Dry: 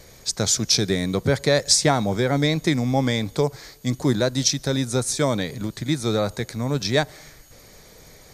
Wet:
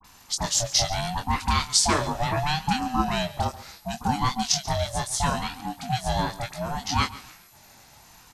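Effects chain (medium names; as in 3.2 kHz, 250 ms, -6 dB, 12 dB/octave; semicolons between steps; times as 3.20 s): Chebyshev high-pass 210 Hz, order 10; doubling 22 ms -6 dB; phase dispersion highs, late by 45 ms, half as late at 1.1 kHz; on a send: feedback delay 140 ms, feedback 29%, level -18 dB; on the sum: ring modulator with a swept carrier 430 Hz, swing 20%, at 0.71 Hz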